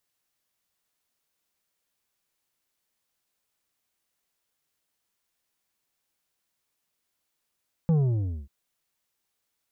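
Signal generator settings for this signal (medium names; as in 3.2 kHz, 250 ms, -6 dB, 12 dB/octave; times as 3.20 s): sub drop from 170 Hz, over 0.59 s, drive 7.5 dB, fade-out 0.58 s, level -19 dB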